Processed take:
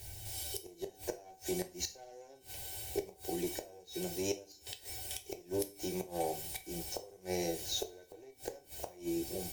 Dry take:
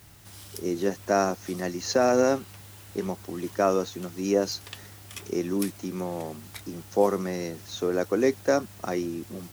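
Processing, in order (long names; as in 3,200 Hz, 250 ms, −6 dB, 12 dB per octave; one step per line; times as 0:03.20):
high-shelf EQ 7,200 Hz +2.5 dB
mains-hum notches 50/100/150/200/250/300 Hz
harmonic and percussive parts rebalanced harmonic +3 dB
low-shelf EQ 85 Hz +9 dB
in parallel at −1.5 dB: downward compressor 10 to 1, threshold −31 dBFS, peak gain reduction 17.5 dB
on the sum: brickwall limiter −12 dBFS, peak gain reduction 6.5 dB
tuned comb filter 760 Hz, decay 0.31 s, mix 90%
asymmetric clip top −40.5 dBFS
phaser with its sweep stopped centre 520 Hz, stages 4
gate with flip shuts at −37 dBFS, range −25 dB
coupled-rooms reverb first 0.3 s, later 1.6 s, from −27 dB, DRR 6.5 dB
level +13 dB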